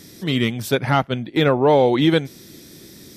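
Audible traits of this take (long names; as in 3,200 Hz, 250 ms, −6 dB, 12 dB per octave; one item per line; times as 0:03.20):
background noise floor −44 dBFS
spectral slope −5.0 dB per octave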